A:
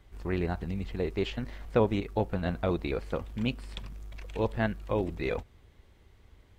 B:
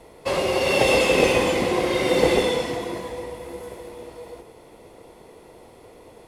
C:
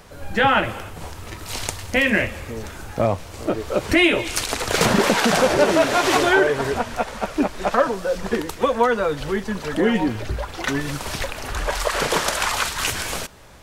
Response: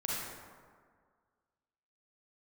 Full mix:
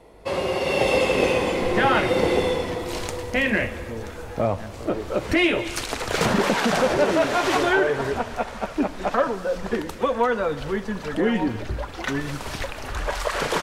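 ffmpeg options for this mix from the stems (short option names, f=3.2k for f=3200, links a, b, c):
-filter_complex "[0:a]volume=-10.5dB[a];[1:a]volume=-4.5dB,asplit=2[b][c];[c]volume=-9dB[d];[2:a]asoftclip=type=tanh:threshold=-6dB,adelay=1400,volume=-3dB,asplit=2[e][f];[f]volume=-19dB[g];[3:a]atrim=start_sample=2205[h];[d][g]amix=inputs=2:normalize=0[i];[i][h]afir=irnorm=-1:irlink=0[j];[a][b][e][j]amix=inputs=4:normalize=0,highshelf=f=4.9k:g=-6.5"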